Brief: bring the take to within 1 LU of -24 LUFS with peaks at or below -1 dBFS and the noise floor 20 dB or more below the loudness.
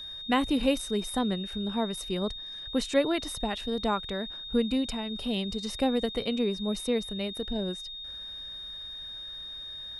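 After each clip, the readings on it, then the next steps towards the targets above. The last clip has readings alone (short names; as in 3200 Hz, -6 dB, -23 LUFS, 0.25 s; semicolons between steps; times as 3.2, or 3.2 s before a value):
steady tone 3700 Hz; tone level -38 dBFS; loudness -30.5 LUFS; peak -11.5 dBFS; loudness target -24.0 LUFS
-> notch 3700 Hz, Q 30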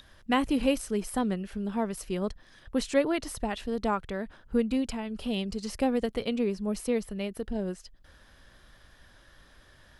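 steady tone none; loudness -30.5 LUFS; peak -11.5 dBFS; loudness target -24.0 LUFS
-> gain +6.5 dB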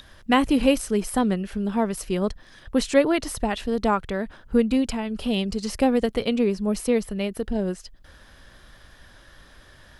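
loudness -24.0 LUFS; peak -5.0 dBFS; noise floor -51 dBFS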